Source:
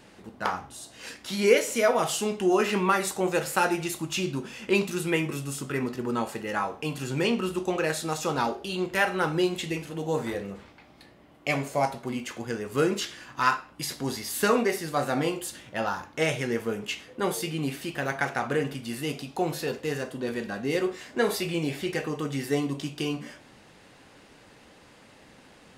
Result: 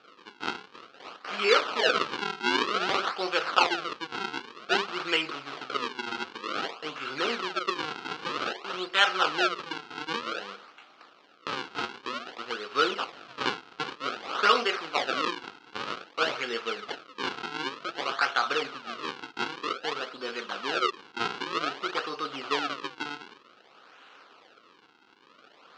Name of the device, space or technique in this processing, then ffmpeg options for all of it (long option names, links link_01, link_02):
circuit-bent sampling toy: -filter_complex "[0:a]asplit=3[link_01][link_02][link_03];[link_01]afade=type=out:start_time=13.11:duration=0.02[link_04];[link_02]asubboost=boost=7.5:cutoff=190,afade=type=in:start_time=13.11:duration=0.02,afade=type=out:start_time=13.95:duration=0.02[link_05];[link_03]afade=type=in:start_time=13.95:duration=0.02[link_06];[link_04][link_05][link_06]amix=inputs=3:normalize=0,acrusher=samples=42:mix=1:aa=0.000001:lfo=1:lforange=67.2:lforate=0.53,highpass=590,equalizer=frequency=600:width_type=q:width=4:gain=-5,equalizer=frequency=880:width_type=q:width=4:gain=-4,equalizer=frequency=1300:width_type=q:width=4:gain=9,equalizer=frequency=1900:width_type=q:width=4:gain=-4,equalizer=frequency=2900:width_type=q:width=4:gain=5,equalizer=frequency=4200:width_type=q:width=4:gain=3,lowpass=frequency=5000:width=0.5412,lowpass=frequency=5000:width=1.3066,volume=2.5dB"